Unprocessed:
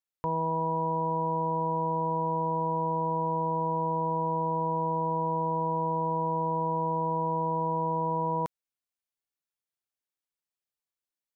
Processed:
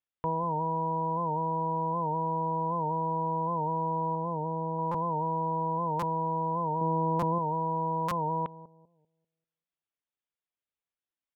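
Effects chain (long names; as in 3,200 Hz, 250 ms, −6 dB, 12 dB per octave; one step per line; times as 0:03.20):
reverb reduction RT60 0.5 s
0:04.15–0:04.79: parametric band 1,100 Hz −11.5 dB 0.3 octaves
bucket-brigade delay 196 ms, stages 1,024, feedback 31%, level −14.5 dB
downsampling to 8,000 Hz
0:06.81–0:07.39: parametric band 260 Hz +7.5 dB 1.7 octaves
buffer that repeats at 0:04.91/0:05.99/0:07.19/0:08.08, samples 256, times 5
wow of a warped record 78 rpm, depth 100 cents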